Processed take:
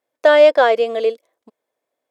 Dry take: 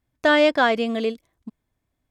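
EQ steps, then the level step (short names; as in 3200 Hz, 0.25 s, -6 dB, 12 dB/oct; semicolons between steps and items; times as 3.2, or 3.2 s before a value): resonant high-pass 510 Hz, resonance Q 3.7; 0.0 dB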